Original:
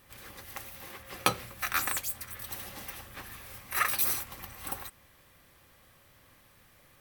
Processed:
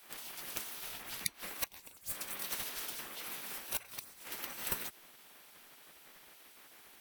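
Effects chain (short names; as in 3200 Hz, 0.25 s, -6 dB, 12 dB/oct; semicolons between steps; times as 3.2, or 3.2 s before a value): flipped gate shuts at -18 dBFS, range -26 dB; reverse echo 69 ms -21 dB; spectral gate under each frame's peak -10 dB weak; gain +5 dB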